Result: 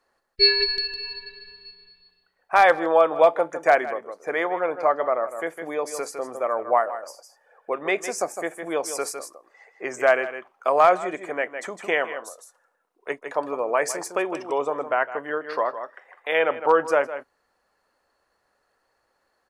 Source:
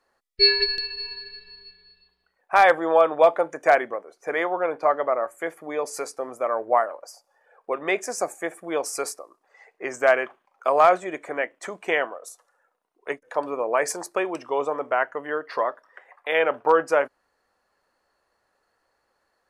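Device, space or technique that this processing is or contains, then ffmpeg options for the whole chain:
ducked delay: -filter_complex "[0:a]asplit=3[link_01][link_02][link_03];[link_02]adelay=157,volume=-6.5dB[link_04];[link_03]apad=whole_len=866737[link_05];[link_04][link_05]sidechaincompress=threshold=-31dB:ratio=12:attack=24:release=198[link_06];[link_01][link_06]amix=inputs=2:normalize=0"

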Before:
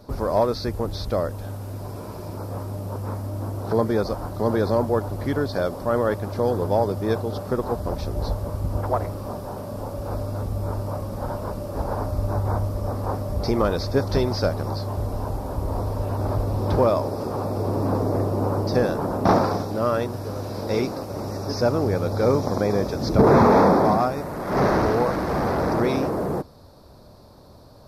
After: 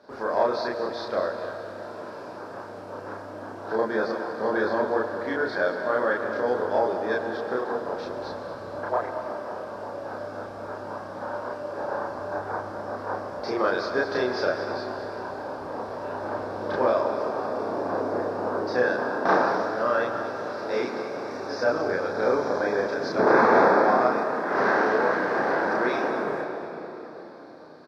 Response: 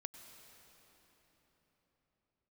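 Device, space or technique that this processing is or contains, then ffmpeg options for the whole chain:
station announcement: -filter_complex "[0:a]highpass=350,lowpass=4600,equalizer=frequency=1600:width_type=o:width=0.32:gain=11.5,aecho=1:1:32.07|236.2:1|0.282[link_01];[1:a]atrim=start_sample=2205[link_02];[link_01][link_02]afir=irnorm=-1:irlink=0"

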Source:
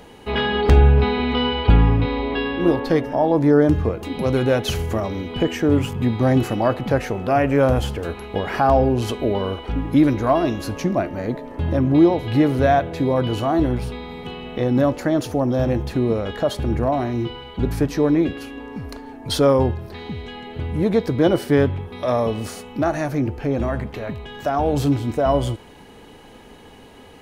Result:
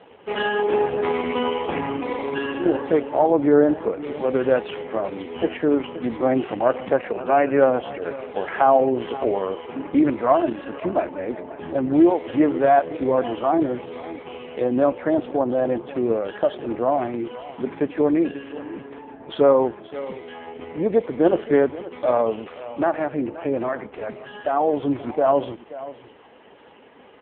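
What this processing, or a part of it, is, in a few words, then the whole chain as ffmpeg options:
satellite phone: -af "highpass=330,lowpass=3100,aecho=1:1:528:0.158,volume=2dB" -ar 8000 -c:a libopencore_amrnb -b:a 4750

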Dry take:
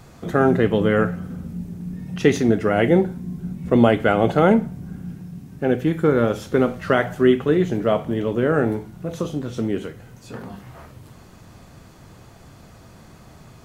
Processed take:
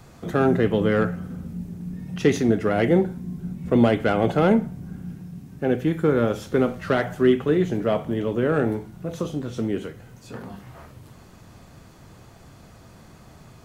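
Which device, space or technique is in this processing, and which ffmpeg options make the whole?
one-band saturation: -filter_complex "[0:a]acrossover=split=440|4100[link_01][link_02][link_03];[link_02]asoftclip=type=tanh:threshold=-14.5dB[link_04];[link_01][link_04][link_03]amix=inputs=3:normalize=0,volume=-2dB"

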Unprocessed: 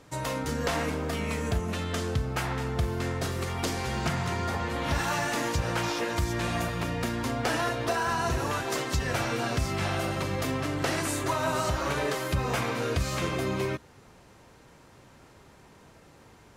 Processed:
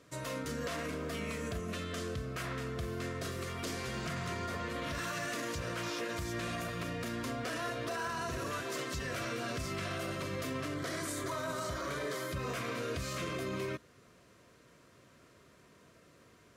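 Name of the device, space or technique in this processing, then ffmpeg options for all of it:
PA system with an anti-feedback notch: -filter_complex "[0:a]highpass=frequency=120:poles=1,asuperstop=centerf=840:order=4:qfactor=3.5,alimiter=limit=-23.5dB:level=0:latency=1:release=12,asettb=1/sr,asplit=3[link_01][link_02][link_03];[link_01]atrim=end=10.754[link_04];[link_02]atrim=start=10.75:end=12.34,asetpts=PTS-STARTPTS,afade=type=in:duration=0.004:curve=qsin,afade=type=out:start_time=1.586:duration=0.004:curve=qsin,bandreject=frequency=2700:width=6[link_05];[link_03]atrim=start=12.336[link_06];[link_04][link_05]acrossfade=duration=0.004:curve1=hsin:curve2=qsin[link_07];[link_07][link_06]acrossfade=duration=0.004:curve1=qsin:curve2=hsin,volume=-5.5dB"

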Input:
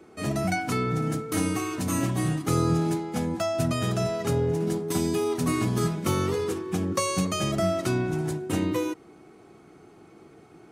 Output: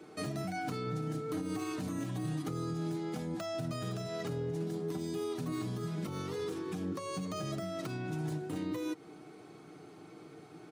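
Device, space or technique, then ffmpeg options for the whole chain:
broadcast voice chain: -af "highpass=91,deesser=0.9,acompressor=threshold=-30dB:ratio=6,equalizer=frequency=4000:width_type=o:width=0.74:gain=4.5,alimiter=level_in=3.5dB:limit=-24dB:level=0:latency=1:release=193,volume=-3.5dB,aecho=1:1:6.6:0.39,volume=-1.5dB"

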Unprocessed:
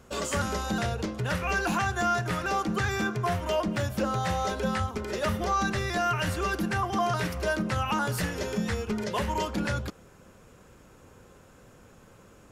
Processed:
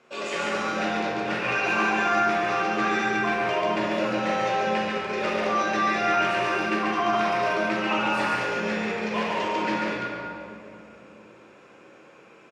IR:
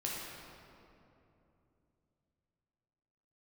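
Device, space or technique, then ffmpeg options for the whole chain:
station announcement: -filter_complex "[0:a]highpass=340,lowpass=4700,equalizer=frequency=2400:width_type=o:width=0.32:gain=9,aecho=1:1:139.9|242:0.708|0.282[link_01];[1:a]atrim=start_sample=2205[link_02];[link_01][link_02]afir=irnorm=-1:irlink=0"

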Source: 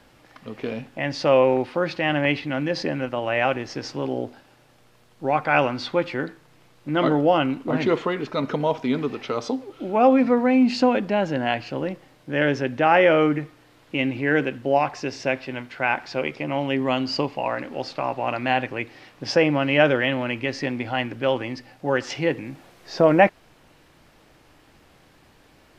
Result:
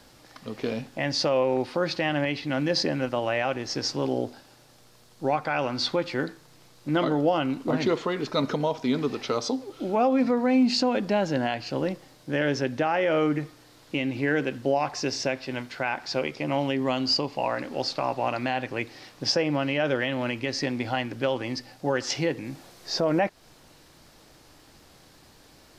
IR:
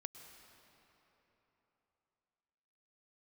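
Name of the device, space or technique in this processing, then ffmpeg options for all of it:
over-bright horn tweeter: -af "highshelf=frequency=3500:width_type=q:width=1.5:gain=6,alimiter=limit=-14dB:level=0:latency=1:release=236"

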